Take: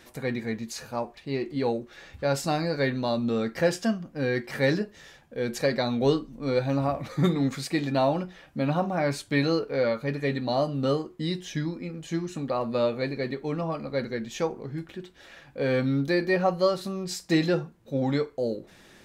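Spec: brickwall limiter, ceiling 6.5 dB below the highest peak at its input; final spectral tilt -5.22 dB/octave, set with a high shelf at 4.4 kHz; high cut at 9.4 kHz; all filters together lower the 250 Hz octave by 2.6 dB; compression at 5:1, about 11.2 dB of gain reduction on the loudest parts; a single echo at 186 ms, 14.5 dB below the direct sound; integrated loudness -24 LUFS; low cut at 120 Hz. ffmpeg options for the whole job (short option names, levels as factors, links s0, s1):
-af "highpass=120,lowpass=9400,equalizer=f=250:t=o:g=-3,highshelf=f=4400:g=-5.5,acompressor=threshold=0.0251:ratio=5,alimiter=level_in=1.41:limit=0.0631:level=0:latency=1,volume=0.708,aecho=1:1:186:0.188,volume=5.01"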